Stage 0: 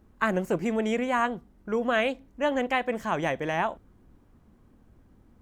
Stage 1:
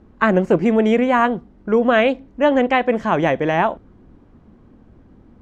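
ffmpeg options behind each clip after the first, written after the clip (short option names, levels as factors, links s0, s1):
-af "lowpass=4600,equalizer=f=310:w=0.43:g=5,volume=2.24"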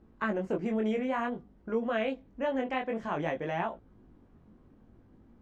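-af "acompressor=threshold=0.0501:ratio=1.5,flanger=delay=17.5:depth=5.9:speed=0.55,volume=0.422"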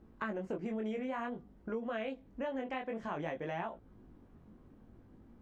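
-af "acompressor=threshold=0.0126:ratio=2.5"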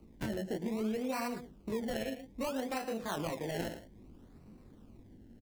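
-filter_complex "[0:a]aecho=1:1:114:0.266,acrossover=split=130|520|2400[s0][s1][s2][s3];[s2]acrusher=samples=25:mix=1:aa=0.000001:lfo=1:lforange=25:lforate=0.61[s4];[s0][s1][s4][s3]amix=inputs=4:normalize=0,volume=1.33"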